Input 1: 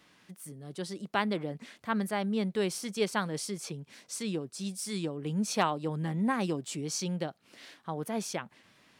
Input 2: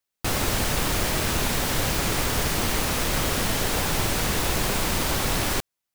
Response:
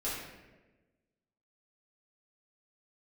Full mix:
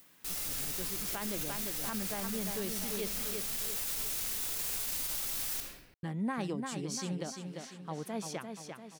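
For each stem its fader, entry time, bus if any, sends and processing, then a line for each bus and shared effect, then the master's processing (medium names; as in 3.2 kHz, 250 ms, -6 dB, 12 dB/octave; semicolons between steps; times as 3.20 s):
-4.5 dB, 0.00 s, muted 3.13–6.03 s, no send, echo send -6.5 dB, none
-5.5 dB, 0.00 s, send -5 dB, no echo send, pre-emphasis filter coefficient 0.9; upward compressor, threshold -38 dBFS; auto duck -15 dB, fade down 0.30 s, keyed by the first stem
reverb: on, RT60 1.2 s, pre-delay 4 ms
echo: feedback delay 345 ms, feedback 49%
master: peak limiter -26 dBFS, peak gain reduction 9.5 dB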